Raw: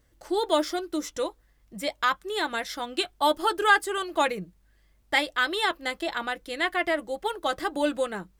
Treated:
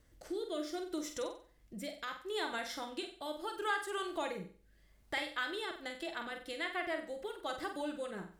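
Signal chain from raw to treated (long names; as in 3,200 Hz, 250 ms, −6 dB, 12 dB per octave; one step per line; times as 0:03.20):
downward compressor 2 to 1, threshold −46 dBFS, peak gain reduction 17 dB
rotating-speaker cabinet horn 0.7 Hz, later 7 Hz, at 0:05.33
flutter between parallel walls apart 8 metres, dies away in 0.42 s
level +1.5 dB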